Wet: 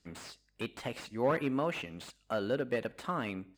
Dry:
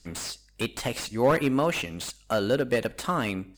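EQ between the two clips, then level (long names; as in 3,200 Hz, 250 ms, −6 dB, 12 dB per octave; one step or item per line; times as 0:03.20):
high-pass filter 150 Hz 6 dB per octave
bass and treble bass +2 dB, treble −10 dB
−7.5 dB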